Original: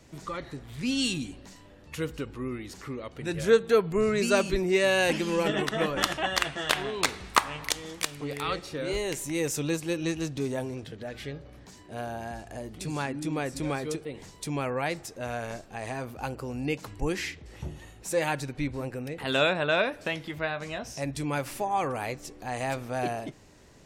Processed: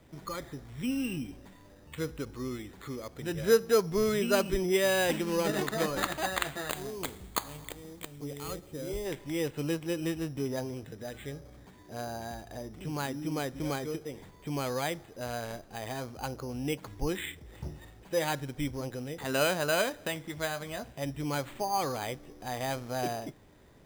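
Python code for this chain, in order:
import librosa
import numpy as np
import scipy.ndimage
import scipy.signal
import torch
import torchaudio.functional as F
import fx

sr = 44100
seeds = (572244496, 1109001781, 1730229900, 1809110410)

y = np.repeat(scipy.signal.resample_poly(x, 1, 8), 8)[:len(x)]
y = fx.peak_eq(y, sr, hz=1600.0, db=-10.5, octaves=2.7, at=(6.69, 9.05), fade=0.02)
y = y * librosa.db_to_amplitude(-2.5)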